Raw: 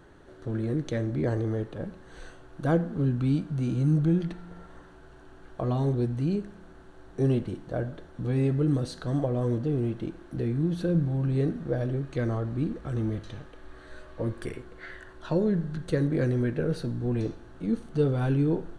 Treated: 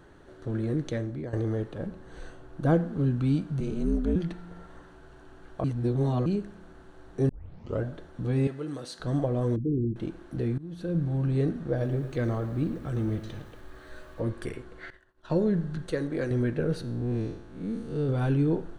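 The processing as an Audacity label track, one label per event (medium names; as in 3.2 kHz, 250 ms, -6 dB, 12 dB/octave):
0.860000	1.330000	fade out, to -13.5 dB
1.860000	2.740000	tilt shelf lows +3 dB
3.600000	4.160000	ring modulator 110 Hz
5.640000	6.260000	reverse
7.290000	7.290000	tape start 0.54 s
8.470000	9.000000	high-pass 800 Hz 6 dB/octave
9.560000	9.960000	resonances exaggerated exponent 3
10.580000	11.150000	fade in, from -22 dB
11.700000	14.210000	bit-crushed delay 110 ms, feedback 55%, word length 9-bit, level -13 dB
14.900000	15.300000	expander -35 dBFS
15.860000	16.310000	peaking EQ 130 Hz -10 dB 1.9 oct
16.810000	18.090000	spectral blur width 162 ms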